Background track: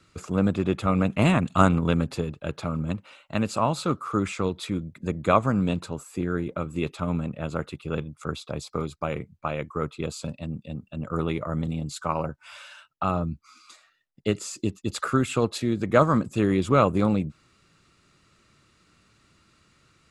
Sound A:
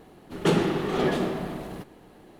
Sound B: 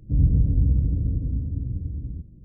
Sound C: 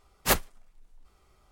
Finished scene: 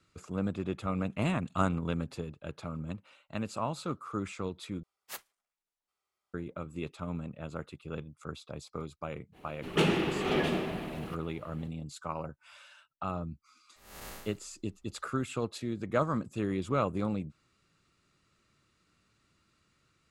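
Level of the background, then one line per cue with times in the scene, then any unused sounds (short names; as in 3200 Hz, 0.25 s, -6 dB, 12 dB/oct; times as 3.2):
background track -10 dB
4.83 replace with C -17.5 dB + HPF 1200 Hz 6 dB/oct
9.32 add A -5 dB, fades 0.05 s + bell 2600 Hz +9 dB 0.66 oct
13.76 add C -10 dB + time blur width 0.294 s
not used: B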